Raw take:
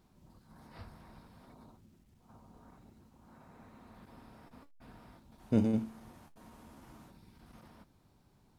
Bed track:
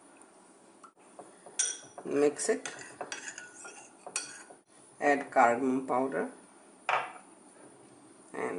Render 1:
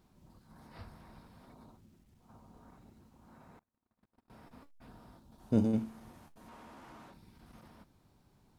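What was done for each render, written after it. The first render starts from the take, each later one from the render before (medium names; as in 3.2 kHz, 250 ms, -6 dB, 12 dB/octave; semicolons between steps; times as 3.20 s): 3.59–4.30 s: gate -52 dBFS, range -37 dB; 4.88–5.73 s: peaking EQ 2.2 kHz -7.5 dB; 6.48–7.14 s: overdrive pedal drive 16 dB, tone 2.3 kHz, clips at -43.5 dBFS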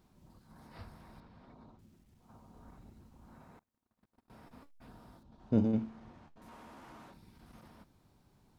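1.20–1.79 s: distance through air 140 m; 2.57–3.44 s: bass shelf 81 Hz +10 dB; 5.23–6.42 s: distance through air 140 m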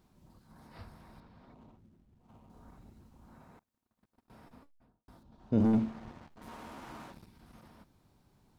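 1.54–2.50 s: median filter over 25 samples; 4.43–5.08 s: studio fade out; 5.60–7.27 s: waveshaping leveller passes 2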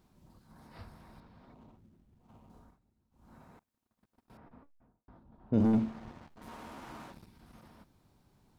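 2.55–3.34 s: dip -19.5 dB, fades 0.24 s; 4.37–5.54 s: low-pass 1.8 kHz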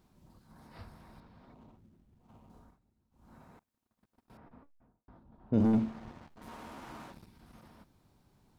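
no audible change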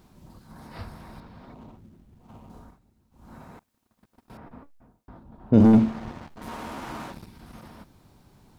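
trim +11 dB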